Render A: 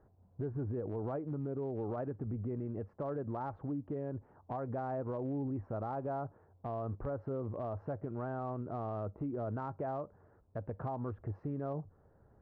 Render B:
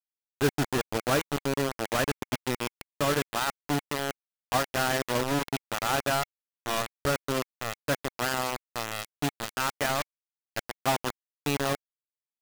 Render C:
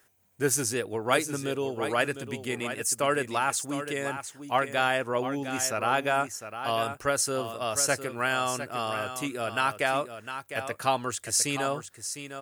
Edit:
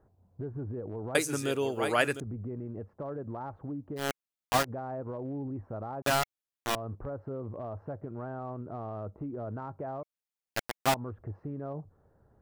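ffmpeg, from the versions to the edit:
ffmpeg -i take0.wav -i take1.wav -i take2.wav -filter_complex "[1:a]asplit=3[link_01][link_02][link_03];[0:a]asplit=5[link_04][link_05][link_06][link_07][link_08];[link_04]atrim=end=1.152[link_09];[2:a]atrim=start=1.148:end=2.202[link_10];[link_05]atrim=start=2.198:end=4.06[link_11];[link_01]atrim=start=3.96:end=4.71[link_12];[link_06]atrim=start=4.61:end=6.022[link_13];[link_02]atrim=start=6.018:end=6.752[link_14];[link_07]atrim=start=6.748:end=10.032[link_15];[link_03]atrim=start=10.028:end=10.942[link_16];[link_08]atrim=start=10.938[link_17];[link_09][link_10]acrossfade=duration=0.004:curve1=hsin:curve2=hsin[link_18];[link_18][link_11]acrossfade=duration=0.004:curve1=hsin:curve2=hsin[link_19];[link_19][link_12]acrossfade=duration=0.1:curve1=tri:curve2=tri[link_20];[link_20][link_13]acrossfade=duration=0.1:curve1=tri:curve2=tri[link_21];[link_21][link_14]acrossfade=duration=0.004:curve1=hsin:curve2=hsin[link_22];[link_22][link_15]acrossfade=duration=0.004:curve1=hsin:curve2=hsin[link_23];[link_23][link_16]acrossfade=duration=0.004:curve1=hsin:curve2=hsin[link_24];[link_24][link_17]acrossfade=duration=0.004:curve1=hsin:curve2=hsin" out.wav

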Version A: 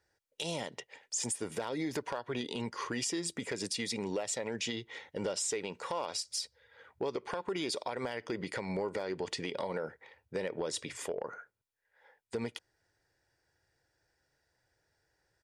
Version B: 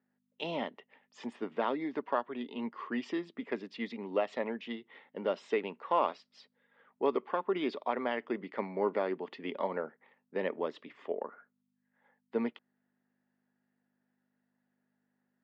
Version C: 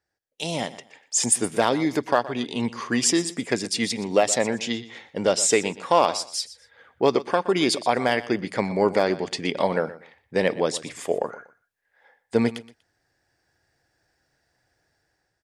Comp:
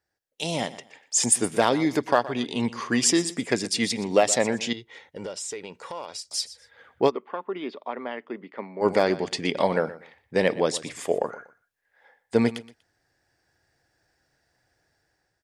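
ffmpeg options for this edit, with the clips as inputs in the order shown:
ffmpeg -i take0.wav -i take1.wav -i take2.wav -filter_complex "[2:a]asplit=3[link_01][link_02][link_03];[link_01]atrim=end=4.732[link_04];[0:a]atrim=start=4.728:end=6.312[link_05];[link_02]atrim=start=6.308:end=7.12[link_06];[1:a]atrim=start=7.06:end=8.86[link_07];[link_03]atrim=start=8.8[link_08];[link_04][link_05]acrossfade=duration=0.004:curve1=hsin:curve2=hsin[link_09];[link_09][link_06]acrossfade=duration=0.004:curve1=hsin:curve2=hsin[link_10];[link_10][link_07]acrossfade=duration=0.06:curve1=tri:curve2=tri[link_11];[link_11][link_08]acrossfade=duration=0.06:curve1=tri:curve2=tri" out.wav

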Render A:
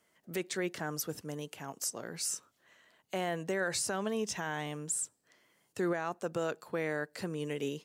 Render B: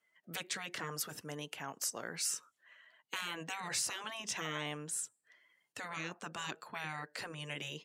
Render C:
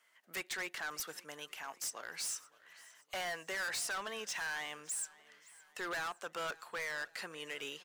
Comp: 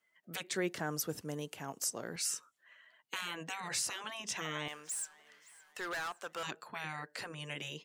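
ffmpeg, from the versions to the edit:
ffmpeg -i take0.wav -i take1.wav -i take2.wav -filter_complex "[1:a]asplit=3[link_01][link_02][link_03];[link_01]atrim=end=0.512[link_04];[0:a]atrim=start=0.508:end=2.162[link_05];[link_02]atrim=start=2.158:end=4.682[link_06];[2:a]atrim=start=4.678:end=6.432[link_07];[link_03]atrim=start=6.428[link_08];[link_04][link_05]acrossfade=duration=0.004:curve1=hsin:curve2=hsin[link_09];[link_09][link_06]acrossfade=duration=0.004:curve1=hsin:curve2=hsin[link_10];[link_10][link_07]acrossfade=duration=0.004:curve1=hsin:curve2=hsin[link_11];[link_11][link_08]acrossfade=duration=0.004:curve1=hsin:curve2=hsin" out.wav

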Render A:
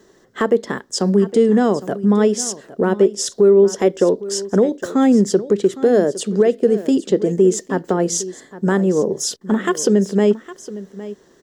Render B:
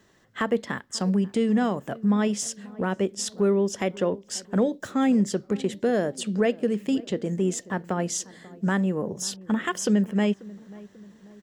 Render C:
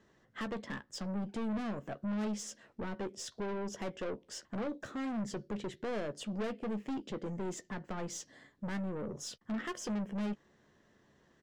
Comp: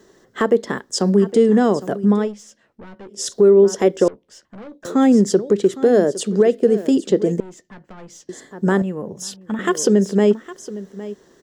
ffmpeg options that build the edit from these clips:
ffmpeg -i take0.wav -i take1.wav -i take2.wav -filter_complex "[2:a]asplit=3[link_01][link_02][link_03];[0:a]asplit=5[link_04][link_05][link_06][link_07][link_08];[link_04]atrim=end=2.34[link_09];[link_01]atrim=start=2.1:end=3.31[link_10];[link_05]atrim=start=3.07:end=4.082[link_11];[link_02]atrim=start=4.078:end=4.852[link_12];[link_06]atrim=start=4.848:end=7.402[link_13];[link_03]atrim=start=7.398:end=8.292[link_14];[link_07]atrim=start=8.288:end=8.822[link_15];[1:a]atrim=start=8.818:end=9.592[link_16];[link_08]atrim=start=9.588[link_17];[link_09][link_10]acrossfade=duration=0.24:curve1=tri:curve2=tri[link_18];[link_18][link_11]acrossfade=duration=0.24:curve1=tri:curve2=tri[link_19];[link_19][link_12]acrossfade=duration=0.004:curve1=hsin:curve2=hsin[link_20];[link_20][link_13]acrossfade=duration=0.004:curve1=hsin:curve2=hsin[link_21];[link_21][link_14]acrossfade=duration=0.004:curve1=hsin:curve2=hsin[link_22];[link_22][link_15]acrossfade=duration=0.004:curve1=hsin:curve2=hsin[link_23];[link_23][link_16]acrossfade=duration=0.004:curve1=hsin:curve2=hsin[link_24];[link_24][link_17]acrossfade=duration=0.004:curve1=hsin:curve2=hsin" out.wav

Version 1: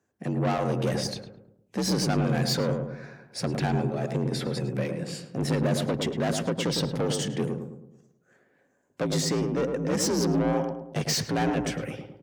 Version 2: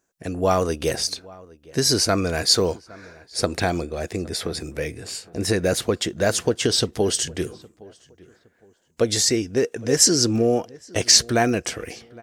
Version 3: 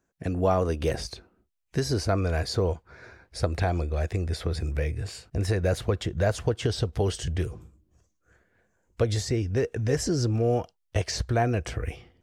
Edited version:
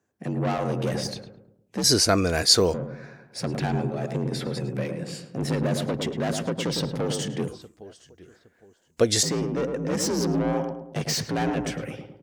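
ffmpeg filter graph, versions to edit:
ffmpeg -i take0.wav -i take1.wav -filter_complex "[1:a]asplit=2[link_01][link_02];[0:a]asplit=3[link_03][link_04][link_05];[link_03]atrim=end=1.842[link_06];[link_01]atrim=start=1.838:end=2.742[link_07];[link_04]atrim=start=2.738:end=7.482[link_08];[link_02]atrim=start=7.478:end=9.232[link_09];[link_05]atrim=start=9.228[link_10];[link_06][link_07]acrossfade=duration=0.004:curve1=hsin:curve2=hsin[link_11];[link_11][link_08]acrossfade=duration=0.004:curve1=hsin:curve2=hsin[link_12];[link_12][link_09]acrossfade=duration=0.004:curve1=hsin:curve2=hsin[link_13];[link_13][link_10]acrossfade=duration=0.004:curve1=hsin:curve2=hsin" out.wav

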